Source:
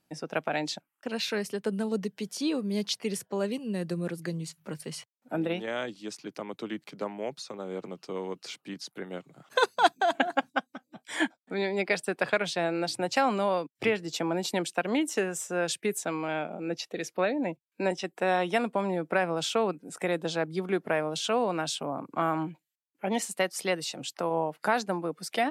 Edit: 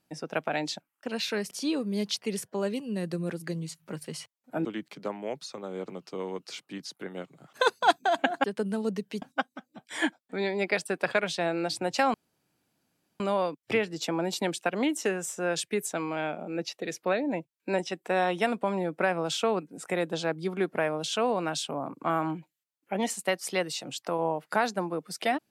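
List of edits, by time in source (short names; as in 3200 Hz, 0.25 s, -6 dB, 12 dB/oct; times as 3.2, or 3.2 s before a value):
1.51–2.29 move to 10.4
5.43–6.61 cut
13.32 insert room tone 1.06 s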